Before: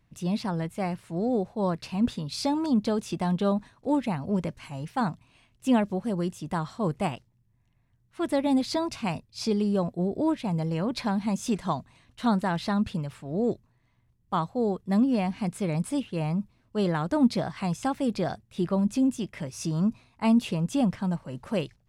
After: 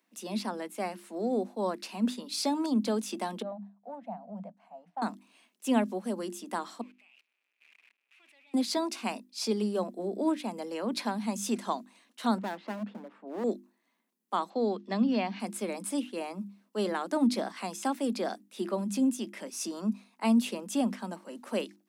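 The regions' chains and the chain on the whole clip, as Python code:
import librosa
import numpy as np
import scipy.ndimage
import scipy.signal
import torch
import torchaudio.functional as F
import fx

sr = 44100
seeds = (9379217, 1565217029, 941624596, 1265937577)

y = fx.chain(x, sr, fx.leveller(passes=1),
    fx.double_bandpass(hz=350.0, octaves=2.0), at=(3.42, 5.02))
y = fx.chain(y, sr, fx.zero_step(step_db=-33.5),
    fx.bandpass_q(hz=2500.0, q=7.6),
    fx.level_steps(step_db=20), at=(6.81, 8.54))
y = fx.chain(y, sr, fx.lowpass(hz=1300.0, slope=12),
    fx.clip_hard(threshold_db=-28.0), at=(12.38, 13.44))
y = fx.chain(y, sr, fx.lowpass(hz=4600.0, slope=24),
    fx.high_shelf(hz=2600.0, db=6.5),
    fx.band_squash(depth_pct=40), at=(14.5, 15.4))
y = scipy.signal.sosfilt(scipy.signal.butter(16, 200.0, 'highpass', fs=sr, output='sos'), y)
y = fx.high_shelf(y, sr, hz=7700.0, db=10.5)
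y = fx.hum_notches(y, sr, base_hz=50, count=7)
y = y * librosa.db_to_amplitude(-2.5)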